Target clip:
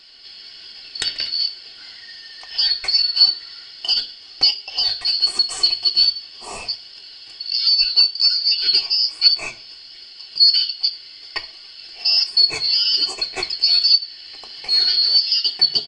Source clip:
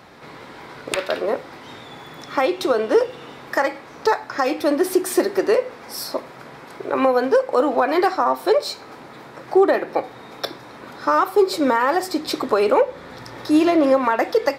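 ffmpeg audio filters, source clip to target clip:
-filter_complex "[0:a]afftfilt=real='real(if(lt(b,272),68*(eq(floor(b/68),0)*3+eq(floor(b/68),1)*2+eq(floor(b/68),2)*1+eq(floor(b/68),3)*0)+mod(b,68),b),0)':imag='imag(if(lt(b,272),68*(eq(floor(b/68),0)*3+eq(floor(b/68),1)*2+eq(floor(b/68),2)*1+eq(floor(b/68),3)*0)+mod(b,68),b),0)':win_size=2048:overlap=0.75,aresample=22050,aresample=44100,asplit=2[s0][s1];[s1]adelay=64,lowpass=f=1300:p=1,volume=0.112,asplit=2[s2][s3];[s3]adelay=64,lowpass=f=1300:p=1,volume=0.43,asplit=2[s4][s5];[s5]adelay=64,lowpass=f=1300:p=1,volume=0.43[s6];[s0][s2][s4][s6]amix=inputs=4:normalize=0,flanger=delay=4.5:depth=4.8:regen=59:speed=1.4:shape=sinusoidal,asetrate=40517,aresample=44100,bandreject=f=50:t=h:w=6,bandreject=f=100:t=h:w=6,bandreject=f=150:t=h:w=6,bandreject=f=200:t=h:w=6,aecho=1:1:2.7:0.42,volume=1.5"

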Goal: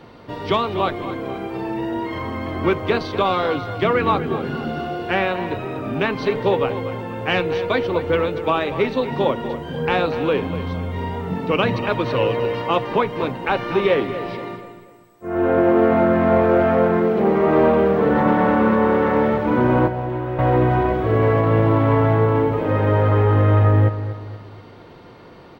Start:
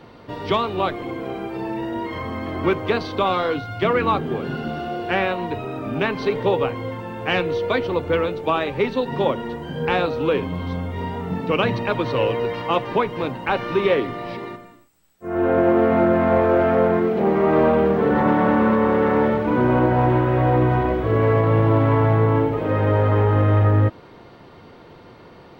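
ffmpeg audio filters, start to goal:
-filter_complex "[0:a]asplit=2[s0][s1];[s1]adelay=241,lowpass=f=4300:p=1,volume=0.251,asplit=2[s2][s3];[s3]adelay=241,lowpass=f=4300:p=1,volume=0.41,asplit=2[s4][s5];[s5]adelay=241,lowpass=f=4300:p=1,volume=0.41,asplit=2[s6][s7];[s7]adelay=241,lowpass=f=4300:p=1,volume=0.41[s8];[s0][s2][s4][s6][s8]amix=inputs=5:normalize=0,asettb=1/sr,asplit=3[s9][s10][s11];[s9]atrim=end=19.874[s12];[s10]atrim=start=19.87:end=20.39,asetpts=PTS-STARTPTS,afade=t=in:d=0.004:c=qsin,afade=t=out:st=0.516:d=0.004:c=qsin,acrossover=split=310|620|2500[s13][s14][s15][s16];[s13]acompressor=threshold=0.0355:ratio=4[s17];[s14]acompressor=threshold=0.0316:ratio=4[s18];[s15]acompressor=threshold=0.0158:ratio=4[s19];[s16]acompressor=threshold=0.002:ratio=4[s20];[s17][s18][s19][s20]amix=inputs=4:normalize=0[s21];[s11]atrim=start=20.386[s22];[s12][s21]acrossfade=d=0.004:c1=hsin:c2=qsin[s23];[s23][s22]acrossfade=d=0.004:c1=qsin:c2=hsin,volume=1.12"

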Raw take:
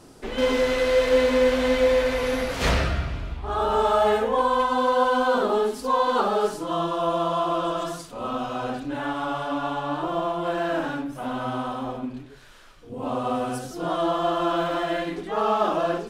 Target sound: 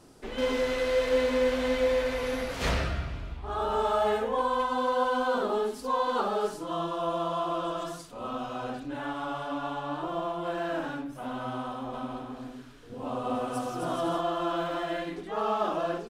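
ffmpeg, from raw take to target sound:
-filter_complex "[0:a]asplit=3[s0][s1][s2];[s0]afade=t=out:st=11.92:d=0.02[s3];[s1]aecho=1:1:260|416|509.6|565.8|599.5:0.631|0.398|0.251|0.158|0.1,afade=t=in:st=11.92:d=0.02,afade=t=out:st=14.2:d=0.02[s4];[s2]afade=t=in:st=14.2:d=0.02[s5];[s3][s4][s5]amix=inputs=3:normalize=0,volume=0.501"

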